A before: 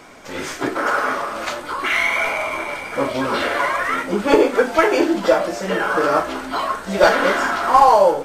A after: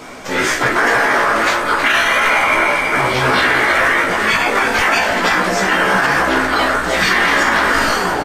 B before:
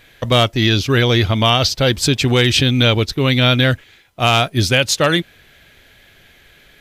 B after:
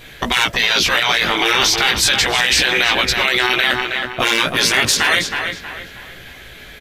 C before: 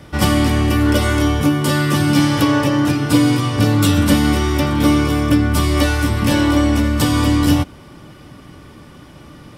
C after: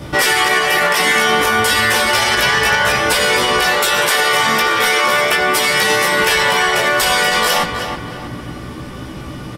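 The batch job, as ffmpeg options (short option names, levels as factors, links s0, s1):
-filter_complex "[0:a]afftfilt=real='re*lt(hypot(re,im),0.355)':imag='im*lt(hypot(re,im),0.355)':win_size=1024:overlap=0.75,adynamicequalizer=threshold=0.00794:dfrequency=1800:dqfactor=2.1:tfrequency=1800:tqfactor=2.1:attack=5:release=100:ratio=0.375:range=3:mode=boostabove:tftype=bell,asoftclip=type=hard:threshold=0.316,flanger=delay=15.5:depth=2.4:speed=0.33,asplit=2[s0][s1];[s1]adelay=318,lowpass=f=3200:p=1,volume=0.398,asplit=2[s2][s3];[s3]adelay=318,lowpass=f=3200:p=1,volume=0.4,asplit=2[s4][s5];[s5]adelay=318,lowpass=f=3200:p=1,volume=0.4,asplit=2[s6][s7];[s7]adelay=318,lowpass=f=3200:p=1,volume=0.4,asplit=2[s8][s9];[s9]adelay=318,lowpass=f=3200:p=1,volume=0.4[s10];[s2][s4][s6][s8][s10]amix=inputs=5:normalize=0[s11];[s0][s11]amix=inputs=2:normalize=0,alimiter=level_in=6.68:limit=0.891:release=50:level=0:latency=1,volume=0.668"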